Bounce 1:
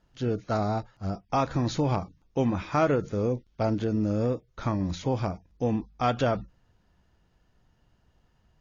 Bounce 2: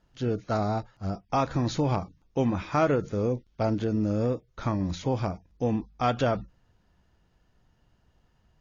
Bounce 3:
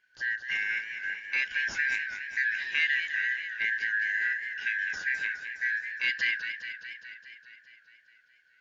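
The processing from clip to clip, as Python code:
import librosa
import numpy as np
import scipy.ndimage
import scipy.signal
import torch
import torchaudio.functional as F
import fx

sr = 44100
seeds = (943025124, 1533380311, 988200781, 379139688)

y1 = x
y2 = fx.band_shuffle(y1, sr, order='4123')
y2 = fx.echo_warbled(y2, sr, ms=207, feedback_pct=68, rate_hz=2.8, cents=122, wet_db=-9)
y2 = F.gain(torch.from_numpy(y2), -4.0).numpy()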